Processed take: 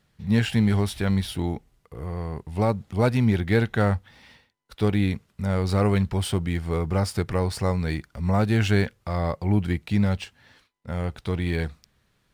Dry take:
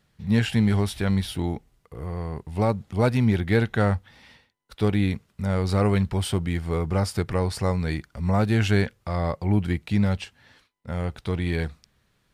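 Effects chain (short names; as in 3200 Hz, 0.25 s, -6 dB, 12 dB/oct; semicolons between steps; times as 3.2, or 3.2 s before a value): IMA ADPCM 176 kbps 44100 Hz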